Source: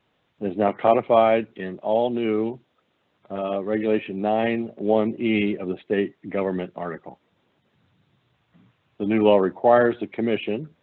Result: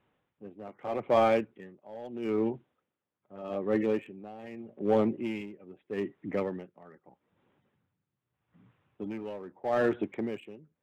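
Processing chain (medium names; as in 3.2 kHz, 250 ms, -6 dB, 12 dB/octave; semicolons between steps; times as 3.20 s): local Wiener filter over 9 samples; band-stop 660 Hz, Q 12; in parallel at -3.5 dB: overload inside the chain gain 19.5 dB; on the sum: logarithmic tremolo 0.8 Hz, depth 19 dB; trim -7 dB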